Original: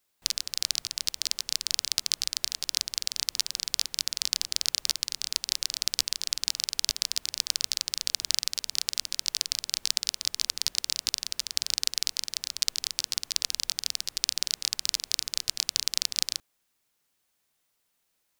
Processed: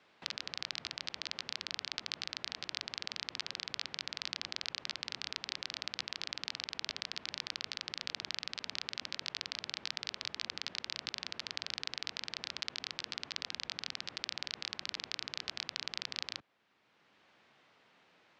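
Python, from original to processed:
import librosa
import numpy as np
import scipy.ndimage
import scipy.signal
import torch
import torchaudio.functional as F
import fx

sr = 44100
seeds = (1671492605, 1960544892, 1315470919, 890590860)

p1 = fx.bandpass_edges(x, sr, low_hz=130.0, high_hz=3000.0)
p2 = fx.over_compress(p1, sr, threshold_db=-45.0, ratio=-1.0)
p3 = p1 + (p2 * librosa.db_to_amplitude(-2.0))
p4 = fx.air_absorb(p3, sr, metres=110.0)
p5 = fx.band_squash(p4, sr, depth_pct=40)
y = p5 * librosa.db_to_amplitude(-2.0)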